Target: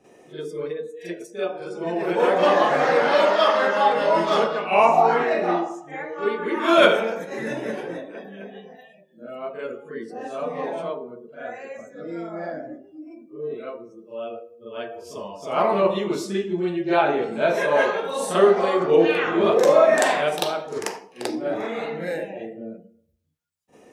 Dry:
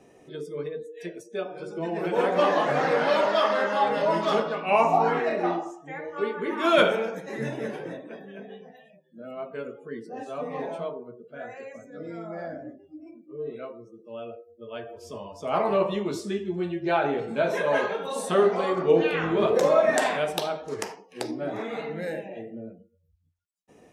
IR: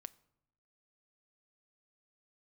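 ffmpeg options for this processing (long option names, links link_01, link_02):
-filter_complex "[0:a]asplit=2[link_01][link_02];[link_02]highpass=220[link_03];[1:a]atrim=start_sample=2205,adelay=42[link_04];[link_03][link_04]afir=irnorm=-1:irlink=0,volume=15dB[link_05];[link_01][link_05]amix=inputs=2:normalize=0,volume=-5dB"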